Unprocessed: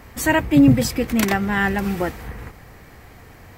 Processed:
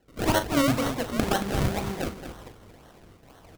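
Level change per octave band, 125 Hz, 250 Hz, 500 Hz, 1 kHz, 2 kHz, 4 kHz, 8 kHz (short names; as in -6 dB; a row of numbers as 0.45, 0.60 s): -7.0, -10.0, -4.0, -4.0, -9.5, -2.0, -5.5 dB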